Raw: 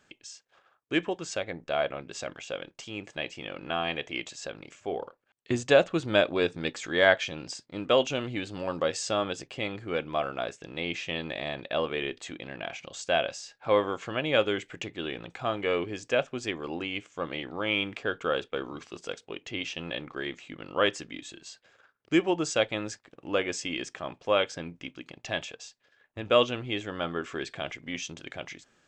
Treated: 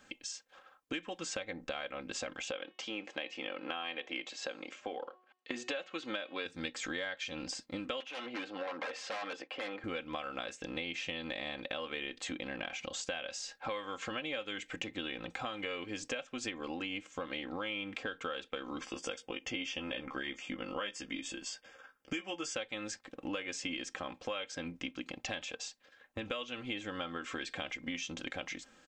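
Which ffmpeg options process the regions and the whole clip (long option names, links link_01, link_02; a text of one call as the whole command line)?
ffmpeg -i in.wav -filter_complex "[0:a]asettb=1/sr,asplit=3[link_01][link_02][link_03];[link_01]atrim=end=2.514[link_04];[link_02]atrim=start=2.51:end=6.46,asetpts=PTS-STARTPTS,afade=type=in:duration=0.004:curve=qsin,afade=type=out:start_time=3.946:duration=0.004:curve=qsin,highpass=290,lowpass=4500,bandreject=frequency=367:width_type=h:width=4,bandreject=frequency=734:width_type=h:width=4,bandreject=frequency=1101:width_type=h:width=4,bandreject=frequency=1468:width_type=h:width=4,bandreject=frequency=1835:width_type=h:width=4,bandreject=frequency=2202:width_type=h:width=4,bandreject=frequency=2569:width_type=h:width=4,bandreject=frequency=2936:width_type=h:width=4,bandreject=frequency=3303:width_type=h:width=4,bandreject=frequency=3670:width_type=h:width=4,bandreject=frequency=4037:width_type=h:width=4,bandreject=frequency=4404:width_type=h:width=4,bandreject=frequency=4771:width_type=h:width=4,bandreject=frequency=5138:width_type=h:width=4,bandreject=frequency=5505:width_type=h:width=4,bandreject=frequency=5872:width_type=h:width=4,bandreject=frequency=6239:width_type=h:width=4,bandreject=frequency=6606:width_type=h:width=4,bandreject=frequency=6973:width_type=h:width=4,bandreject=frequency=7340:width_type=h:width=4,bandreject=frequency=7707:width_type=h:width=4,bandreject=frequency=8074:width_type=h:width=4,bandreject=frequency=8441:width_type=h:width=4,bandreject=frequency=8808:width_type=h:width=4,bandreject=frequency=9175:width_type=h:width=4,bandreject=frequency=9542:width_type=h:width=4,bandreject=frequency=9909:width_type=h:width=4,bandreject=frequency=10276:width_type=h:width=4,bandreject=frequency=10643:width_type=h:width=4,bandreject=frequency=11010:width_type=h:width=4,bandreject=frequency=11377:width_type=h:width=4,bandreject=frequency=11744:width_type=h:width=4,bandreject=frequency=12111:width_type=h:width=4[link_05];[link_03]atrim=start=6.456[link_06];[link_04][link_05]acrossfade=duration=0.004:curve1=hsin:curve2=qsin[link_07];[link_07][link_06]acrossfade=duration=0.004:curve1=qsin:curve2=hsin,asettb=1/sr,asplit=3[link_08][link_09][link_10];[link_08]atrim=end=8.004[link_11];[link_09]atrim=start=8:end=9.84,asetpts=PTS-STARTPTS,afade=type=in:duration=0.004:curve=qsin,afade=type=out:start_time=1.836:duration=0.004:curve=qsin,aeval=exprs='0.0335*(abs(mod(val(0)/0.0335+3,4)-2)-1)':channel_layout=same,highpass=460,lowpass=2600[link_12];[link_10]atrim=start=9.836[link_13];[link_11][link_12]acrossfade=duration=0.004:curve1=hsin:curve2=qsin[link_14];[link_14][link_13]acrossfade=duration=0.004:curve1=qsin:curve2=hsin,asettb=1/sr,asplit=3[link_15][link_16][link_17];[link_15]atrim=end=18.804[link_18];[link_16]atrim=start=18.8:end=22.55,asetpts=PTS-STARTPTS,afade=type=in:duration=0.004:curve=qsin,afade=type=out:start_time=3.746:duration=0.004:curve=qsin,asuperstop=centerf=4000:order=12:qfactor=7,asplit=2[link_19][link_20];[link_20]adelay=15,volume=-6.5dB[link_21];[link_19][link_21]amix=inputs=2:normalize=0,atrim=end_sample=165375[link_22];[link_17]atrim=start=22.546[link_23];[link_18][link_22]acrossfade=duration=0.004:curve1=hsin:curve2=qsin[link_24];[link_24][link_23]acrossfade=duration=0.004:curve1=qsin:curve2=hsin,acrossover=split=1400|3200[link_25][link_26][link_27];[link_25]acompressor=threshold=-37dB:ratio=4[link_28];[link_26]acompressor=threshold=-35dB:ratio=4[link_29];[link_27]acompressor=threshold=-41dB:ratio=4[link_30];[link_28][link_29][link_30]amix=inputs=3:normalize=0,aecho=1:1:3.8:0.64,acompressor=threshold=-39dB:ratio=4,volume=2.5dB" out.wav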